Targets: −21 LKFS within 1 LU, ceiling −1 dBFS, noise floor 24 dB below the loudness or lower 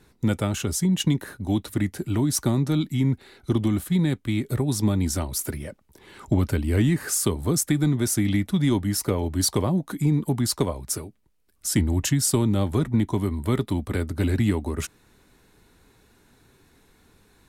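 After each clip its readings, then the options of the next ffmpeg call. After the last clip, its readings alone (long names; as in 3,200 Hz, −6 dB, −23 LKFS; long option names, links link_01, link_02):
integrated loudness −24.5 LKFS; sample peak −9.5 dBFS; target loudness −21.0 LKFS
→ -af "volume=3.5dB"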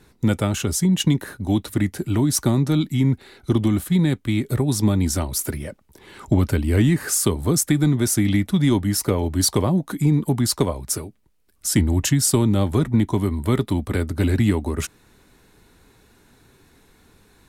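integrated loudness −21.0 LKFS; sample peak −6.0 dBFS; background noise floor −56 dBFS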